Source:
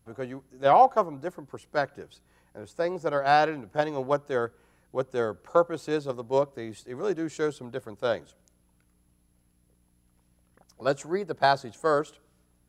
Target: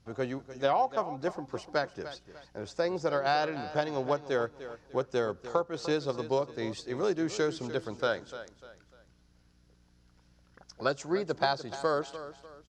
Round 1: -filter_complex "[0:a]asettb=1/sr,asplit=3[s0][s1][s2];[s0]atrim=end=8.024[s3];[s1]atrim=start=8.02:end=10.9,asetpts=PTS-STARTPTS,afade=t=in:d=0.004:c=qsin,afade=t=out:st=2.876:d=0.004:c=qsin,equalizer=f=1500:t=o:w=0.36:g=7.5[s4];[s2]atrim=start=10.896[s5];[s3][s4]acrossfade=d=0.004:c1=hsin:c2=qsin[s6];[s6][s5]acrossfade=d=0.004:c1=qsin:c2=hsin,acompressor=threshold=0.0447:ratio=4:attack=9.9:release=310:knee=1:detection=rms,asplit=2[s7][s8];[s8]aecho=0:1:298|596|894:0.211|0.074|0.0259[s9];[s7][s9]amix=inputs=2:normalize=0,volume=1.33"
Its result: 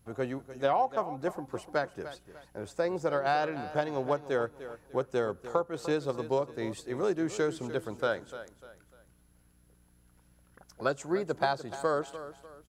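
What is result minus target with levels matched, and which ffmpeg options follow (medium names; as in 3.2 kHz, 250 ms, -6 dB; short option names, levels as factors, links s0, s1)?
4 kHz band -4.5 dB
-filter_complex "[0:a]asettb=1/sr,asplit=3[s0][s1][s2];[s0]atrim=end=8.024[s3];[s1]atrim=start=8.02:end=10.9,asetpts=PTS-STARTPTS,afade=t=in:d=0.004:c=qsin,afade=t=out:st=2.876:d=0.004:c=qsin,equalizer=f=1500:t=o:w=0.36:g=7.5[s4];[s2]atrim=start=10.896[s5];[s3][s4]acrossfade=d=0.004:c1=hsin:c2=qsin[s6];[s6][s5]acrossfade=d=0.004:c1=qsin:c2=hsin,acompressor=threshold=0.0447:ratio=4:attack=9.9:release=310:knee=1:detection=rms,lowpass=f=5300:t=q:w=2.4,asplit=2[s7][s8];[s8]aecho=0:1:298|596|894:0.211|0.074|0.0259[s9];[s7][s9]amix=inputs=2:normalize=0,volume=1.33"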